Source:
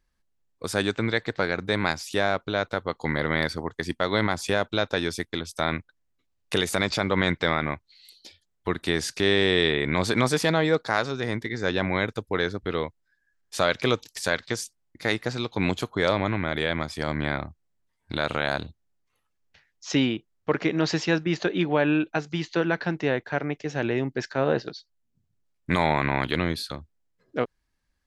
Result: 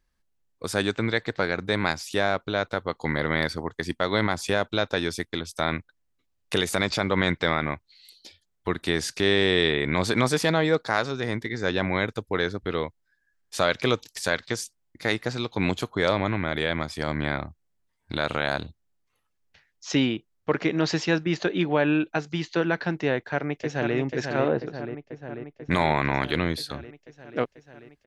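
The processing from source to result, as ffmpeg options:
-filter_complex "[0:a]asplit=2[a][b];[b]afade=t=in:st=23.14:d=0.01,afade=t=out:st=23.96:d=0.01,aecho=0:1:490|980|1470|1960|2450|2940|3430|3920|4410|4900|5390|5880:0.562341|0.421756|0.316317|0.237238|0.177928|0.133446|0.100085|0.0750635|0.0562976|0.0422232|0.0316674|0.0237506[c];[a][c]amix=inputs=2:normalize=0,asettb=1/sr,asplit=3[d][e][f];[d]atrim=end=24.484[g];[e]atrim=start=24.48:end=25.71,asetpts=PTS-STARTPTS,afade=t=in:d=0.004:c=qsin,afade=t=out:st=1.226:d=0.004:c=qsin,lowpass=f=1.1k:p=1[h];[f]atrim=start=25.706[i];[g][h]acrossfade=d=0.004:c1=hsin:c2=qsin[j];[j][i]acrossfade=d=0.004:c1=qsin:c2=hsin"

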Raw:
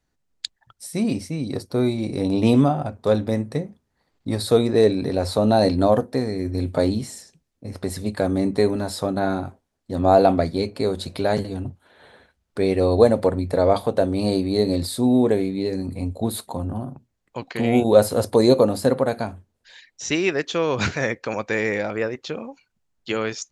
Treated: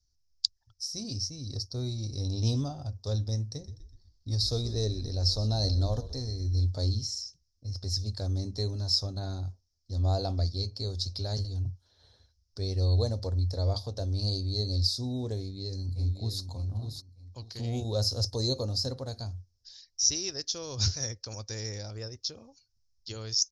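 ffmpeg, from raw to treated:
-filter_complex "[0:a]asettb=1/sr,asplit=3[a][b][c];[a]atrim=end=3.484[d];[b]atrim=start=3.48:end=6.58,asetpts=PTS-STARTPTS,afade=t=in:d=0.004:c=qsin,afade=t=out:st=3.096:d=0.004:c=qsin,asplit=5[e][f][g][h][i];[f]adelay=124,afreqshift=-59,volume=-15.5dB[j];[g]adelay=248,afreqshift=-118,volume=-22.2dB[k];[h]adelay=372,afreqshift=-177,volume=-29dB[l];[i]adelay=496,afreqshift=-236,volume=-35.7dB[m];[e][j][k][l][m]amix=inputs=5:normalize=0,atrim=end_sample=136710[n];[c]atrim=start=6.576[o];[d][n]acrossfade=d=0.004:c1=hsin:c2=qsin[p];[p][o]acrossfade=d=0.004:c1=qsin:c2=hsin,asplit=2[q][r];[r]afade=t=in:st=15.38:d=0.01,afade=t=out:st=16.41:d=0.01,aecho=0:1:600|1200|1800:0.446684|0.0893367|0.0178673[s];[q][s]amix=inputs=2:normalize=0,firequalizer=gain_entry='entry(100,0);entry(160,-20);entry(2300,-27);entry(5300,11);entry(8300,-19)':delay=0.05:min_phase=1,volume=2dB"

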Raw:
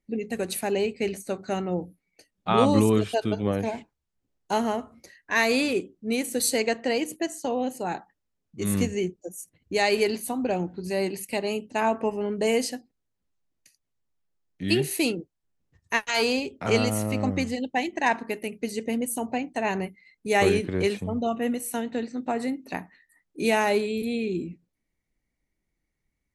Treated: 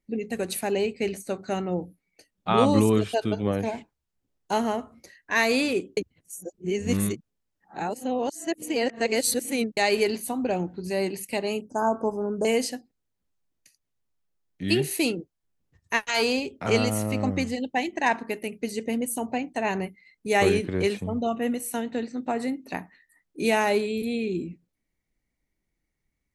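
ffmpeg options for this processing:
-filter_complex "[0:a]asettb=1/sr,asplit=3[a][b][c];[a]atrim=end=11.614[d];[b]atrim=start=11.61:end=12.45,asetpts=PTS-STARTPTS,afade=t=in:d=0.004:c=qsin,afade=t=out:st=0.836:d=0.004:c=qsin,asuperstop=centerf=2800:order=20:qfactor=0.82[e];[c]atrim=start=12.446[f];[d][e]acrossfade=d=0.004:c1=hsin:c2=qsin[g];[g][f]acrossfade=d=0.004:c1=qsin:c2=hsin,asplit=3[h][i][j];[h]atrim=end=5.972[k];[i]atrim=start=5.968:end=9.772,asetpts=PTS-STARTPTS,areverse[l];[j]atrim=start=9.768[m];[k][l]acrossfade=d=0.004:c1=hsin:c2=hsin[n];[n][m]acrossfade=d=0.004:c1=hsin:c2=hsin"

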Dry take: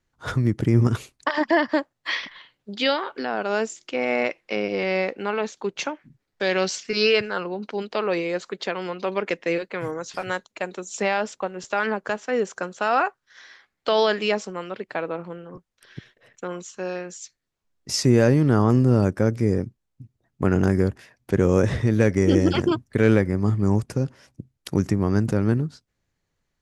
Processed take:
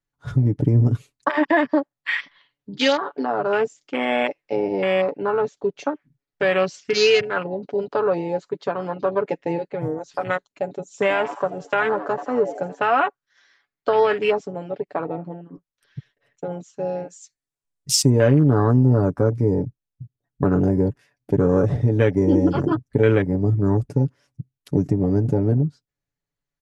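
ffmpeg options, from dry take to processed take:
-filter_complex "[0:a]asettb=1/sr,asplit=3[a][b][c];[a]atrim=end=10.884[d];[b]atrim=start=10.88:end=12.8,asetpts=PTS-STARTPTS,afade=t=in:d=0.004:c=qsin,afade=t=out:st=1.916:d=0.004:c=qsin,asplit=7[e][f][g][h][i][j][k];[f]adelay=83,afreqshift=96,volume=-11dB[l];[g]adelay=166,afreqshift=192,volume=-16dB[m];[h]adelay=249,afreqshift=288,volume=-21.1dB[n];[i]adelay=332,afreqshift=384,volume=-26.1dB[o];[j]adelay=415,afreqshift=480,volume=-31.1dB[p];[k]adelay=498,afreqshift=576,volume=-36.2dB[q];[e][l][m][n][o][p][q]amix=inputs=7:normalize=0,atrim=end_sample=84672[r];[c]atrim=start=12.796[s];[d][r]acrossfade=d=0.004:c1=hsin:c2=qsin[t];[t][s]acrossfade=d=0.004:c1=qsin:c2=hsin,asettb=1/sr,asplit=3[u][v][w];[u]atrim=end=16.984[x];[v]atrim=start=16.98:end=18.1,asetpts=PTS-STARTPTS,afade=t=in:d=0.004:c=qsin,afade=t=out:st=1.116:d=0.004:c=qsin,equalizer=f=8.8k:w=1.5:g=11[y];[w]atrim=start=18.096[z];[x][y]acrossfade=d=0.004:c1=hsin:c2=qsin[aa];[aa][z]acrossfade=d=0.004:c1=qsin:c2=hsin,afwtdn=0.0447,aecho=1:1:7:0.6,acompressor=threshold=-23dB:ratio=1.5,volume=4dB"

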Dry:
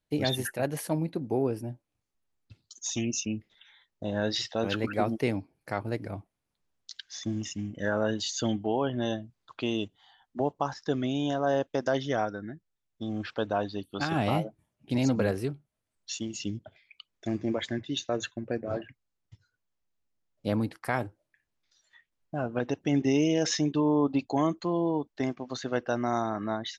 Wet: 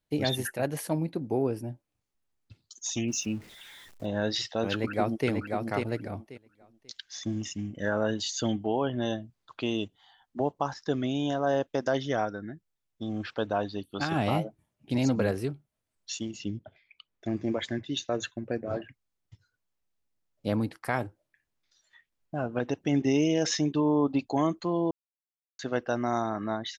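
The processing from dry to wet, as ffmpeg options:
-filter_complex "[0:a]asettb=1/sr,asplit=3[a][b][c];[a]atrim=end=3.084[d];[b]atrim=start=3.08:end=4.06,asetpts=PTS-STARTPTS,afade=t=in:d=0.004:c=qsin,afade=t=out:st=0.976:d=0.004:c=qsin,aeval=exprs='val(0)+0.5*0.00473*sgn(val(0))':c=same[e];[c]atrim=start=4.056[f];[d][e]acrossfade=d=0.004:c1=hsin:c2=qsin[g];[g][f]acrossfade=d=0.004:c1=qsin:c2=hsin,asplit=2[h][i];[i]afade=t=in:st=4.73:d=0.01,afade=t=out:st=5.29:d=0.01,aecho=0:1:540|1080|1620:0.630957|0.126191|0.0252383[j];[h][j]amix=inputs=2:normalize=0,asettb=1/sr,asplit=3[k][l][m];[k]atrim=end=16.314[n];[l]atrim=start=16.31:end=17.37,asetpts=PTS-STARTPTS,afade=t=in:d=0.004:c=qsin,afade=t=out:st=1.056:d=0.004:c=qsin,lowpass=f=2.7k:p=1[o];[m]atrim=start=17.366[p];[n][o]acrossfade=d=0.004:c1=hsin:c2=qsin[q];[q][p]acrossfade=d=0.004:c1=qsin:c2=hsin,asplit=3[r][s][t];[r]atrim=end=24.91,asetpts=PTS-STARTPTS,afade=t=out:st=24.906:d=0.004:c=hsin[u];[s]atrim=start=24.91:end=25.59,asetpts=PTS-STARTPTS,volume=0[v];[t]atrim=start=25.59,asetpts=PTS-STARTPTS,afade=t=in:d=0.004:c=hsin[w];[u][v][w]concat=n=3:v=0:a=1"

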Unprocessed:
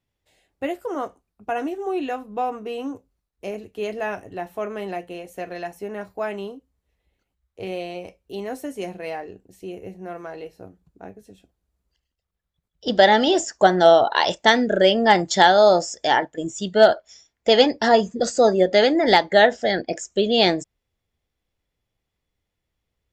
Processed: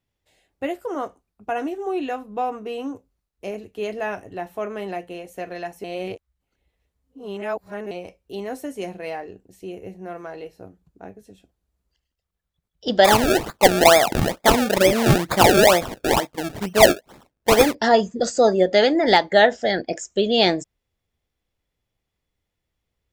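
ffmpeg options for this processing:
-filter_complex "[0:a]asplit=3[a][b][c];[a]afade=t=out:st=13.04:d=0.02[d];[b]acrusher=samples=30:mix=1:aa=0.000001:lfo=1:lforange=30:lforate=2.2,afade=t=in:st=13.04:d=0.02,afade=t=out:st=17.73:d=0.02[e];[c]afade=t=in:st=17.73:d=0.02[f];[d][e][f]amix=inputs=3:normalize=0,asplit=3[g][h][i];[g]atrim=end=5.842[j];[h]atrim=start=5.838:end=7.912,asetpts=PTS-STARTPTS,areverse[k];[i]atrim=start=7.908[l];[j][k]acrossfade=d=0.004:c1=hsin:c2=hsin[m];[m][l]acrossfade=d=0.004:c1=hsin:c2=hsin"

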